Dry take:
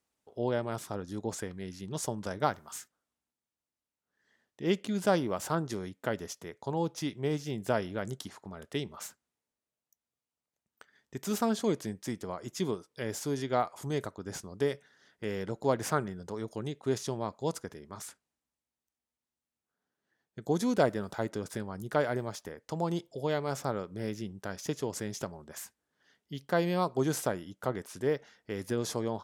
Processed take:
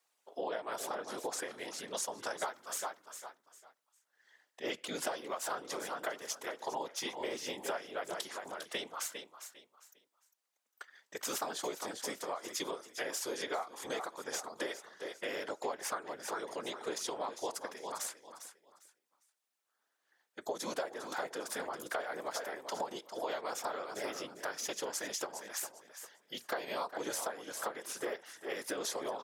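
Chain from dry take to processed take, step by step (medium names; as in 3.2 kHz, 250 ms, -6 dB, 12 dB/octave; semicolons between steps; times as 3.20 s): feedback delay 402 ms, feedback 25%, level -12 dB; whisper effect; high-pass 640 Hz 12 dB/octave; compression 12:1, threshold -40 dBFS, peak gain reduction 16.5 dB; trim +6 dB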